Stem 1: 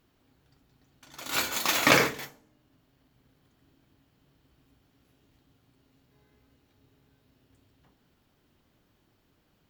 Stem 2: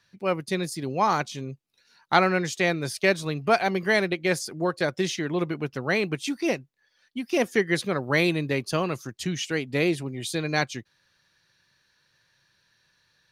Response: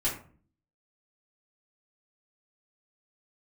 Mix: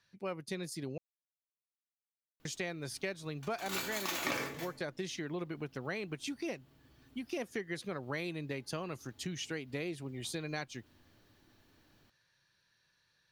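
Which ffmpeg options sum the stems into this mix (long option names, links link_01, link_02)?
-filter_complex "[0:a]adelay=2400,volume=-1dB,asplit=2[link_01][link_02];[link_02]volume=-12.5dB[link_03];[1:a]volume=-7.5dB,asplit=3[link_04][link_05][link_06];[link_04]atrim=end=0.98,asetpts=PTS-STARTPTS,afade=type=out:start_time=0.976:duration=0.004:curve=hsin[link_07];[link_05]atrim=start=0.98:end=2.45,asetpts=PTS-STARTPTS,volume=0[link_08];[link_06]atrim=start=2.45,asetpts=PTS-STARTPTS,afade=type=in:duration=0.004:curve=hsin[link_09];[link_07][link_08][link_09]concat=n=3:v=0:a=1[link_10];[2:a]atrim=start_sample=2205[link_11];[link_03][link_11]afir=irnorm=-1:irlink=0[link_12];[link_01][link_10][link_12]amix=inputs=3:normalize=0,acompressor=threshold=-36dB:ratio=4"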